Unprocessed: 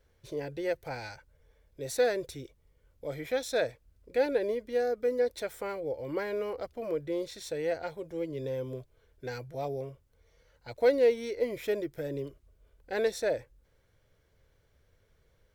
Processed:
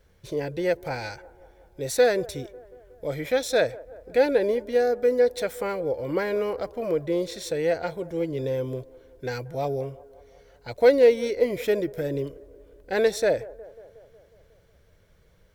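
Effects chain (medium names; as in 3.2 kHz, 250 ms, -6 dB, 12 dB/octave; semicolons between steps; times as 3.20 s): peaking EQ 180 Hz +8.5 dB 0.21 oct; on a send: feedback echo behind a band-pass 182 ms, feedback 64%, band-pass 620 Hz, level -19.5 dB; on the sum: trim +7 dB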